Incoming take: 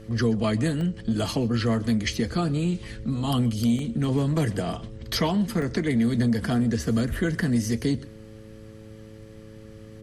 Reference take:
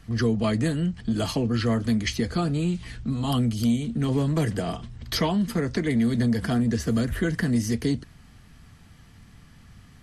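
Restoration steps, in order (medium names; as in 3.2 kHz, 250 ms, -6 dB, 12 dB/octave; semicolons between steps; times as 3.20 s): de-hum 108.6 Hz, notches 5; interpolate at 0.81/3.79/5.62 s, 1.3 ms; inverse comb 128 ms -22.5 dB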